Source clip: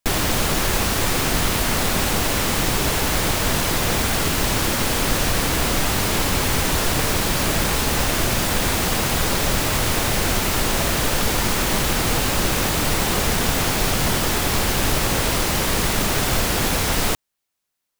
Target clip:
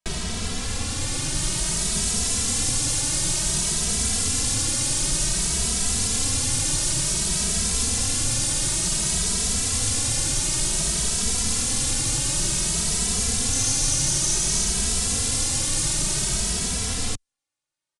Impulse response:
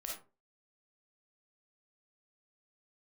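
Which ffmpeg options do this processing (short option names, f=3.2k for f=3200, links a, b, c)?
-filter_complex "[0:a]acrossover=split=250|3000[a][b][c];[b]acompressor=threshold=-32dB:ratio=6[d];[a][d][c]amix=inputs=3:normalize=0,asettb=1/sr,asplit=3[e][f][g];[e]atrim=end=13.534[h];[f]atrim=start=13.53:end=14.68,asetpts=PTS-STARTPTS,afade=t=in:d=0.004:c=qsin,afade=t=out:st=1.146:d=0.004:c=qsin,equalizer=f=6.1k:w=6.1:g=7[i];[g]atrim=start=14.676[j];[h][i]acrossfade=d=0.004:c1=hsin:c2=qsin[k];[k][j]acrossfade=d=0.004:c1=qsin:c2=hsin,acrossover=split=5900[l][m];[m]dynaudnorm=f=130:g=21:m=13.5dB[n];[l][n]amix=inputs=2:normalize=0,aresample=22050,aresample=44100,asplit=2[o][p];[p]adelay=2.7,afreqshift=0.55[q];[o][q]amix=inputs=2:normalize=1,volume=-2dB"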